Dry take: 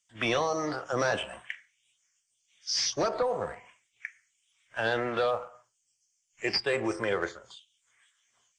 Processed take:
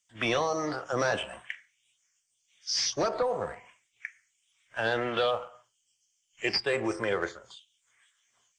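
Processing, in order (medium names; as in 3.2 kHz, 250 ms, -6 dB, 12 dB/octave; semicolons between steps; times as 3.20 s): 5.01–6.49 s: peaking EQ 3.1 kHz +12.5 dB 0.33 oct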